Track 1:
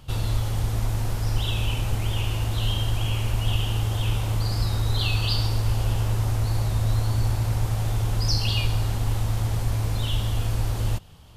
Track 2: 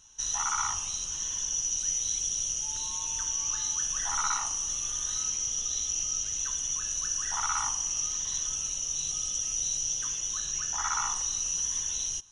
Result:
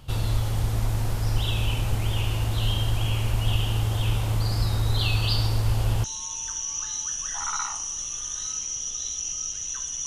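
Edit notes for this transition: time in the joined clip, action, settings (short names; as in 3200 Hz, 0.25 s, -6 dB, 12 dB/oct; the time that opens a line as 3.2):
track 1
6.04 switch to track 2 from 2.75 s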